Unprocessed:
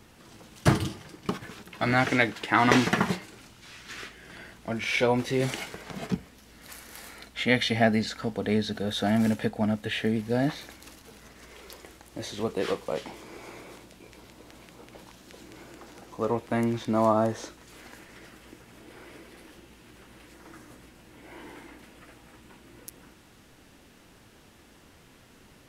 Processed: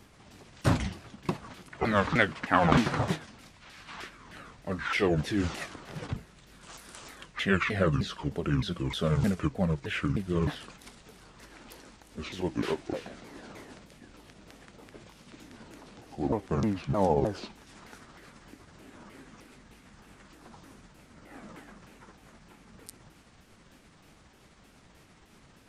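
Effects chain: repeated pitch sweeps -10 st, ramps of 0.308 s; gain -1 dB

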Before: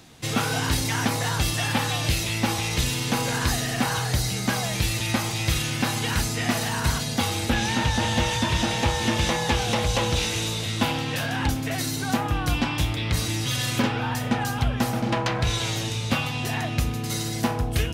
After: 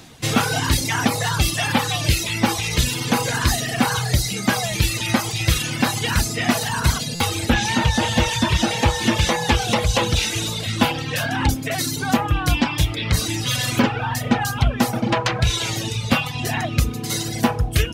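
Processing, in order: reverb removal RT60 1.2 s; stuck buffer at 7.15, samples 256, times 8; gain +6.5 dB

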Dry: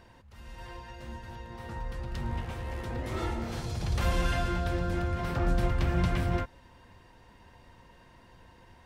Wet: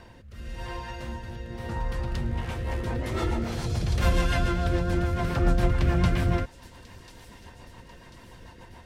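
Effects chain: rotary speaker horn 0.9 Hz, later 7 Hz, at 2.07; thin delay 1.042 s, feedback 54%, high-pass 4900 Hz, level -13 dB; in parallel at -2.5 dB: compressor, threshold -42 dBFS, peak gain reduction 17.5 dB; on the sum: gain +5 dB

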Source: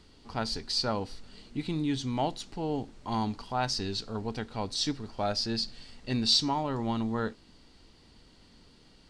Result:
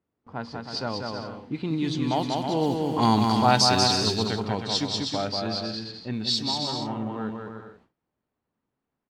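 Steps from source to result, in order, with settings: Doppler pass-by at 3.31, 11 m/s, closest 5.3 m; HPF 89 Hz 24 dB/oct; added noise white -72 dBFS; high shelf 5300 Hz +6 dB; low-pass opened by the level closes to 1000 Hz, open at -31.5 dBFS; on a send: bouncing-ball echo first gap 0.19 s, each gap 0.65×, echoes 5; on the sum: gate with hold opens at -59 dBFS; in parallel at +2 dB: compressor, threshold -42 dBFS, peak gain reduction 16.5 dB; on the sum: gain +8.5 dB

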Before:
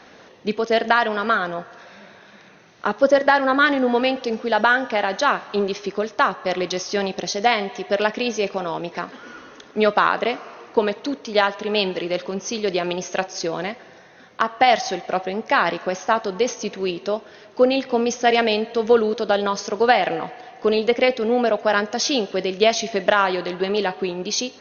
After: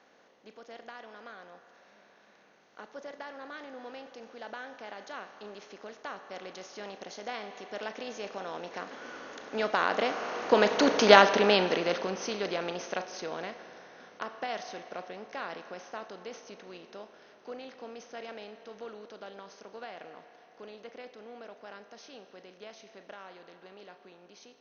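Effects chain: per-bin compression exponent 0.6; Doppler pass-by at 11.05, 8 m/s, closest 2.2 m; gain -1 dB

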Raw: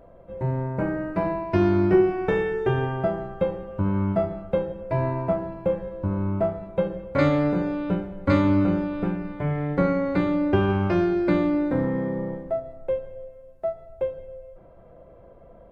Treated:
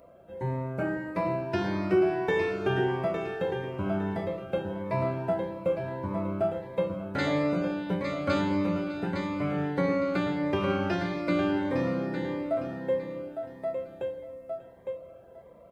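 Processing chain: tilt +2 dB/oct; in parallel at -1.5 dB: limiter -18 dBFS, peak gain reduction 7.5 dB; on the sum: HPF 63 Hz; notches 50/100/150/200/250/300/350 Hz; on a send: feedback echo 0.858 s, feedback 28%, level -7 dB; on the sum: cascading phaser rising 1.6 Hz; gain -5 dB

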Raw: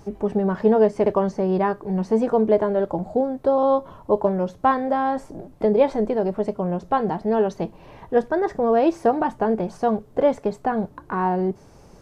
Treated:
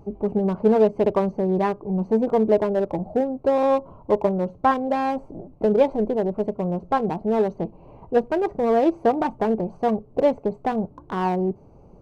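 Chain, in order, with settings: Wiener smoothing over 25 samples

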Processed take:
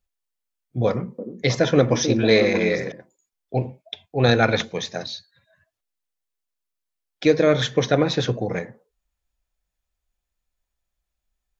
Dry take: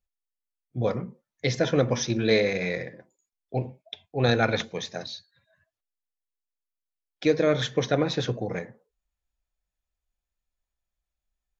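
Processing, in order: 0.87–2.92 delay with a stepping band-pass 0.313 s, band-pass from 310 Hz, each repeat 1.4 oct, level -3 dB; gain +5 dB

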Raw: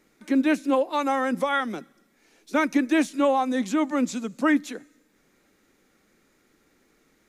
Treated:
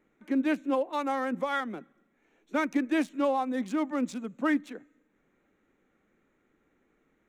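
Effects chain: Wiener smoothing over 9 samples; gain -5.5 dB

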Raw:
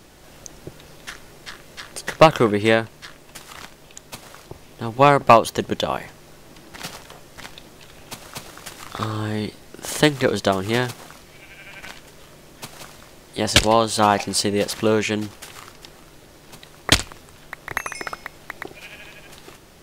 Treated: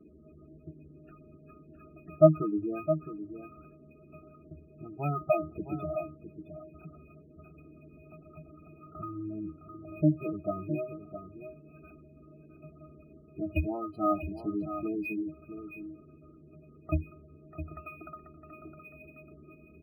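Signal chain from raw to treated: octave resonator D#, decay 0.17 s; spectral gate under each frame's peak -15 dB strong; band noise 200–410 Hz -59 dBFS; on a send: echo 0.662 s -10 dB; on the sum: decimation joined by straight lines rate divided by 3×

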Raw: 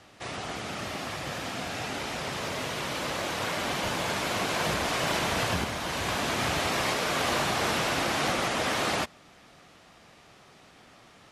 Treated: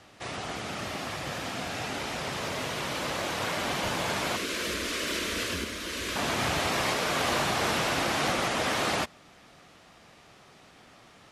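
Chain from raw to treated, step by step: 4.36–6.16 fixed phaser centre 330 Hz, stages 4

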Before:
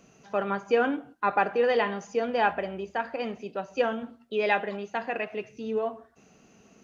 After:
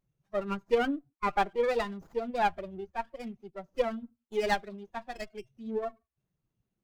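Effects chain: per-bin expansion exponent 2; running maximum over 9 samples

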